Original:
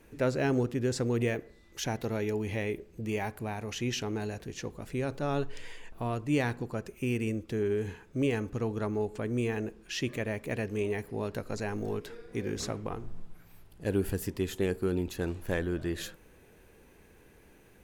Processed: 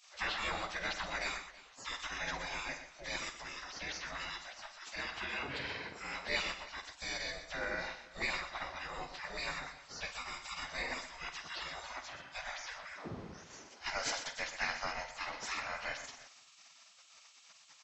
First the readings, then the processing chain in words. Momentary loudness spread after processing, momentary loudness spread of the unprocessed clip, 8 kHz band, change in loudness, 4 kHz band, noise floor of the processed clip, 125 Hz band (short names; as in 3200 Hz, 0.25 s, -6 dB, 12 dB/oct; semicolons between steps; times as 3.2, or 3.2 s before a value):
13 LU, 9 LU, -2.0 dB, -6.5 dB, +2.5 dB, -61 dBFS, -21.0 dB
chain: nonlinear frequency compression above 1300 Hz 1.5:1; spectral gate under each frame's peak -25 dB weak; tapped delay 51/123/326 ms -11.5/-10.5/-19.5 dB; gain +11.5 dB